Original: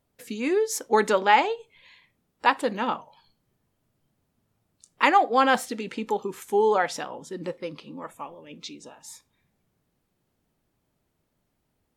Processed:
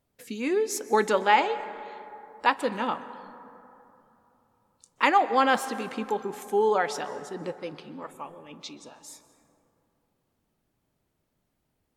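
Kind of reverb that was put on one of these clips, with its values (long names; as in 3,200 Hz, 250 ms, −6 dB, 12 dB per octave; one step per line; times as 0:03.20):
dense smooth reverb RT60 3.1 s, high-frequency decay 0.35×, pre-delay 115 ms, DRR 13.5 dB
level −2 dB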